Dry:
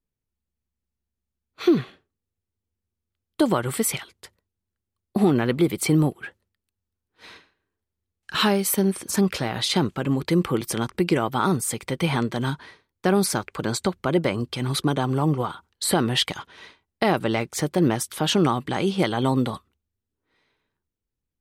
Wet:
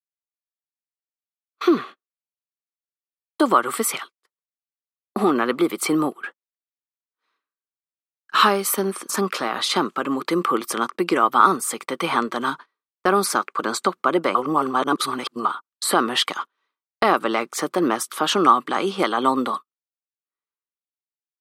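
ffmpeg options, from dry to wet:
-filter_complex "[0:a]asplit=3[s0][s1][s2];[s0]atrim=end=14.352[s3];[s1]atrim=start=14.348:end=15.452,asetpts=PTS-STARTPTS,areverse[s4];[s2]atrim=start=15.448[s5];[s3][s4]acrossfade=d=0.004:c1=hsin:c2=hsin[s6];[s6][s5]acrossfade=d=0.004:c1=hsin:c2=hsin,highpass=f=240:w=0.5412,highpass=f=240:w=1.3066,agate=range=0.02:threshold=0.0126:ratio=16:detection=peak,equalizer=f=1200:w=3:g=14,volume=1.12"

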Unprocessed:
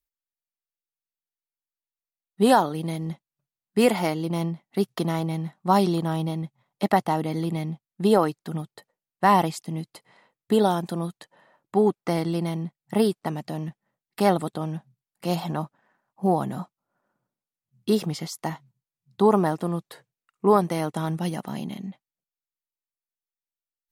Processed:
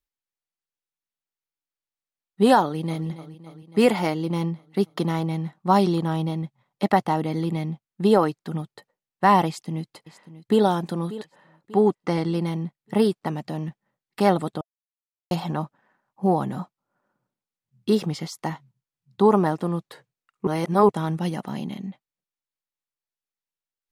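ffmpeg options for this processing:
-filter_complex "[0:a]asplit=2[s0][s1];[s1]afade=t=in:st=2.62:d=0.01,afade=t=out:st=3.06:d=0.01,aecho=0:1:280|560|840|1120|1400|1680|1960|2240|2520:0.188365|0.131855|0.0922988|0.0646092|0.0452264|0.0316585|0.0221609|0.0155127|0.0108589[s2];[s0][s2]amix=inputs=2:normalize=0,asplit=2[s3][s4];[s4]afade=t=in:st=9.47:d=0.01,afade=t=out:st=10.62:d=0.01,aecho=0:1:590|1180|1770|2360:0.16788|0.0671522|0.0268609|0.0107443[s5];[s3][s5]amix=inputs=2:normalize=0,asettb=1/sr,asplit=3[s6][s7][s8];[s6]atrim=end=11.944[s9];[s7]atrim=start=11.94:end=12.34,asetpts=PTS-STARTPTS,afade=t=in:d=0.004:c=qsin,afade=t=out:st=0.396:d=0.004:c=qsin,lowpass=9400[s10];[s8]atrim=start=12.336[s11];[s9][s10]acrossfade=d=0.004:c1=hsin:c2=qsin[s12];[s12][s11]acrossfade=d=0.004:c1=qsin:c2=hsin,asplit=5[s13][s14][s15][s16][s17];[s13]atrim=end=14.61,asetpts=PTS-STARTPTS,afade=t=out:st=14.606:d=0.004:c=hsin[s18];[s14]atrim=start=14.61:end=15.31,asetpts=PTS-STARTPTS,volume=0[s19];[s15]atrim=start=15.31:end=20.472,asetpts=PTS-STARTPTS,afade=t=in:d=0.004:c=hsin[s20];[s16]atrim=start=20.468:end=20.892,asetpts=PTS-STARTPTS,areverse[s21];[s17]atrim=start=20.888[s22];[s18][s19][s20]concat=n=3:v=0:a=1[s23];[s23][s21]acrossfade=d=0.004:c1=hsin:c2=hsin[s24];[s24][s22]acrossfade=d=0.004:c1=hsin:c2=hsin,highshelf=f=8500:g=-10,bandreject=f=670:w=12,volume=1.19"

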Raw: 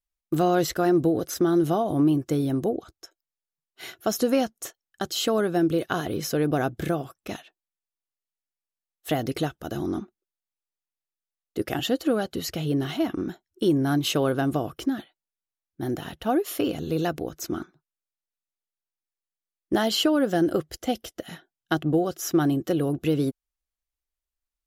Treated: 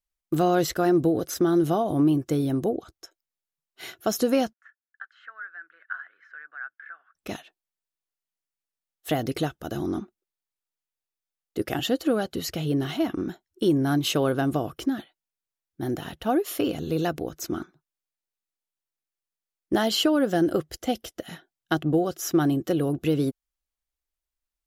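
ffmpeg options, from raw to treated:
-filter_complex "[0:a]asettb=1/sr,asplit=3[s0][s1][s2];[s0]atrim=end=4.534[s3];[s1]atrim=start=4.53:end=7.15,asetpts=PTS-STARTPTS,afade=t=in:d=0.004:c=qsin,afade=t=out:st=2.616:d=0.004:c=qsin,asuperpass=centerf=1600:order=4:qfactor=3.7[s4];[s2]atrim=start=7.146[s5];[s3][s4]acrossfade=d=0.004:c1=hsin:c2=qsin[s6];[s6][s5]acrossfade=d=0.004:c1=qsin:c2=hsin"

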